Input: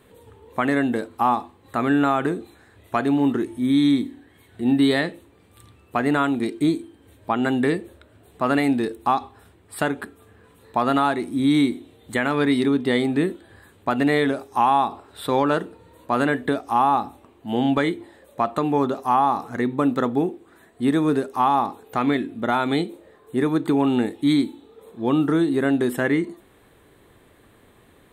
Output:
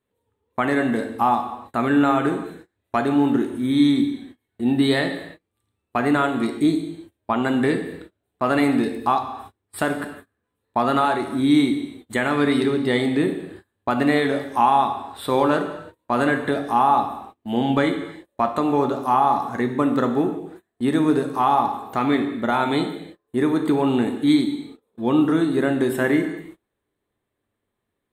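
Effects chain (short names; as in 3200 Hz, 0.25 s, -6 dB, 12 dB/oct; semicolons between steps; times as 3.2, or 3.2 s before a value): non-linear reverb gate 0.36 s falling, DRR 5.5 dB; gate -40 dBFS, range -26 dB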